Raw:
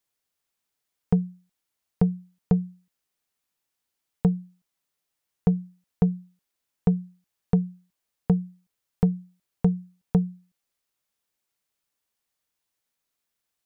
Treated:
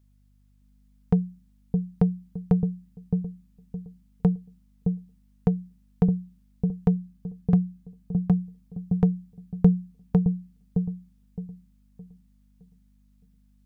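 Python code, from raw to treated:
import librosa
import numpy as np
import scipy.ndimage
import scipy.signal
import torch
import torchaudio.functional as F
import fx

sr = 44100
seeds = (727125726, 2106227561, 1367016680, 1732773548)

y = fx.notch_comb(x, sr, f0_hz=470.0, at=(6.96, 8.39))
y = fx.add_hum(y, sr, base_hz=50, snr_db=31)
y = fx.echo_wet_lowpass(y, sr, ms=615, feedback_pct=31, hz=450.0, wet_db=-4.0)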